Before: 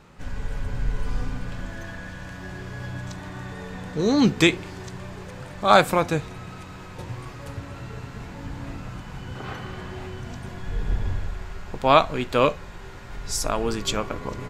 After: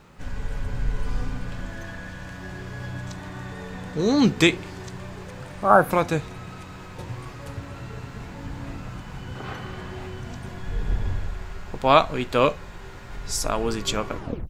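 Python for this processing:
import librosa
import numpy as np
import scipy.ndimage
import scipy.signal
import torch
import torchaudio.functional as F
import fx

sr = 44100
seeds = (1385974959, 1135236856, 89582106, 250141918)

y = fx.tape_stop_end(x, sr, length_s=0.33)
y = fx.spec_repair(y, sr, seeds[0], start_s=5.55, length_s=0.33, low_hz=1700.0, high_hz=9300.0, source='before')
y = fx.quant_dither(y, sr, seeds[1], bits=12, dither='none')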